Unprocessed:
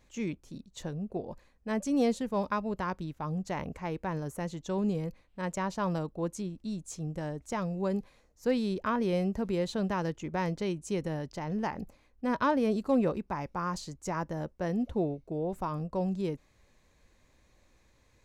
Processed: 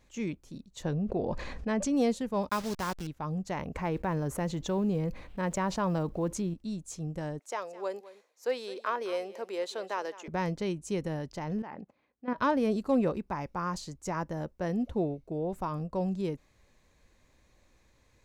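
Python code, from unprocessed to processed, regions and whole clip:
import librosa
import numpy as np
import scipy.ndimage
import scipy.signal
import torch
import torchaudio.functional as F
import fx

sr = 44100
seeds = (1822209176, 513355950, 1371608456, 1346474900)

y = fx.chain(x, sr, fx.lowpass(hz=5300.0, slope=12),
    fx.env_flatten(amount_pct=70), at=(0.85, 1.93))
y = fx.chain(y, sr, fx.delta_hold(step_db=-38.0),
    fx.peak_eq(hz=5200.0, db=7.5, octaves=1.3), at=(2.49, 3.07))
y = fx.chain(y, sr, fx.block_float(bits=7),
    fx.high_shelf(hz=4500.0, db=-9.0),
    fx.env_flatten(amount_pct=50), at=(3.75, 6.54))
y = fx.chain(y, sr, fx.highpass(hz=410.0, slope=24),
    fx.echo_single(ms=211, db=-17.0), at=(7.39, 10.28))
y = fx.chain(y, sr, fx.level_steps(step_db=14),
    fx.bandpass_edges(low_hz=160.0, high_hz=3000.0), at=(11.62, 12.38))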